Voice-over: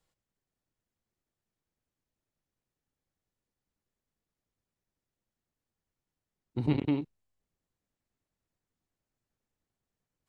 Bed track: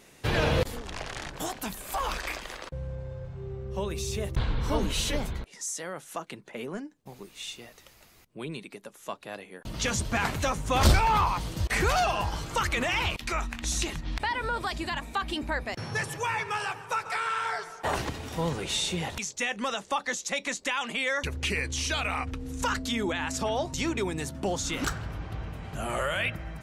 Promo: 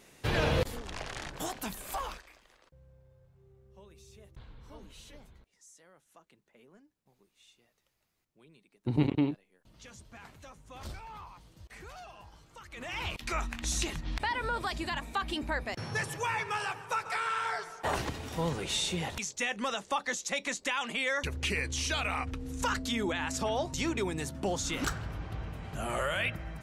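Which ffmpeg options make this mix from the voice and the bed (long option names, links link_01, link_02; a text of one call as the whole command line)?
ffmpeg -i stem1.wav -i stem2.wav -filter_complex "[0:a]adelay=2300,volume=1dB[link_01];[1:a]volume=17.5dB,afade=type=out:start_time=1.9:duration=0.34:silence=0.1,afade=type=in:start_time=12.69:duration=0.7:silence=0.0944061[link_02];[link_01][link_02]amix=inputs=2:normalize=0" out.wav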